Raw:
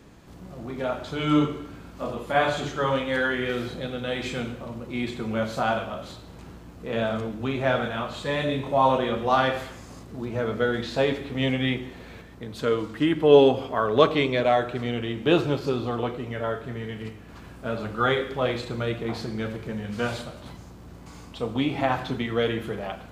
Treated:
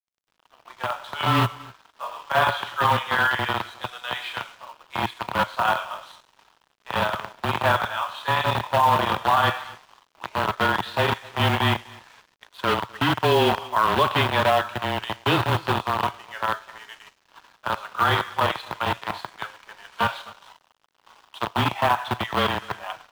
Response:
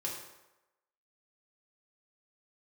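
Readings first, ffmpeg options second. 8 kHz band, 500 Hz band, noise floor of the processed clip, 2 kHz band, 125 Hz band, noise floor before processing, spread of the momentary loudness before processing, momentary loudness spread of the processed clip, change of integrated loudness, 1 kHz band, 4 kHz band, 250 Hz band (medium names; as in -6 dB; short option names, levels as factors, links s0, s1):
no reading, -4.0 dB, -67 dBFS, +5.0 dB, +2.0 dB, -45 dBFS, 18 LU, 14 LU, +2.0 dB, +6.5 dB, +5.0 dB, -5.0 dB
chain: -filter_complex "[0:a]acrossover=split=650[s0][s1];[s0]acrusher=bits=3:mix=0:aa=0.000001[s2];[s2][s1]amix=inputs=2:normalize=0,highpass=120,equalizer=f=140:t=q:w=4:g=8,equalizer=f=300:t=q:w=4:g=-7,equalizer=f=490:t=q:w=4:g=-8,equalizer=f=980:t=q:w=4:g=8,equalizer=f=2200:t=q:w=4:g=-7,lowpass=f=3500:w=0.5412,lowpass=f=3500:w=1.3066,acrusher=bits=7:mode=log:mix=0:aa=0.000001,afreqshift=-24,alimiter=limit=0.224:level=0:latency=1:release=62,tiltshelf=f=970:g=-3.5,asplit=2[s3][s4];[s4]aecho=0:1:253:0.0891[s5];[s3][s5]amix=inputs=2:normalize=0,aeval=exprs='sgn(val(0))*max(abs(val(0))-0.00316,0)':c=same,volume=1.68"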